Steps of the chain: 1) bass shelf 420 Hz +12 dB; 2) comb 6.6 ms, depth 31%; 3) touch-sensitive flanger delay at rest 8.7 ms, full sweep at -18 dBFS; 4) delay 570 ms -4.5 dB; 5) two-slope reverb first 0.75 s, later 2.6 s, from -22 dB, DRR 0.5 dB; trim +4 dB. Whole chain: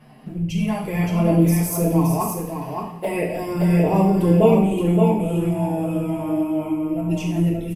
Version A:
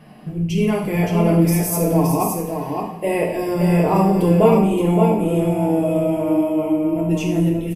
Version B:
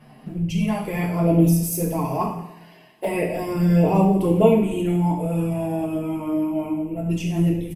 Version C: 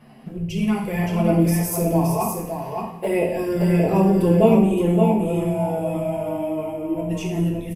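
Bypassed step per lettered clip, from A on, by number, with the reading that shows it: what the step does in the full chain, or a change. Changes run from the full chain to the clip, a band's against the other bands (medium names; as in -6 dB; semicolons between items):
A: 3, 125 Hz band -2.5 dB; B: 4, echo-to-direct 2.0 dB to -0.5 dB; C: 2, 125 Hz band -1.5 dB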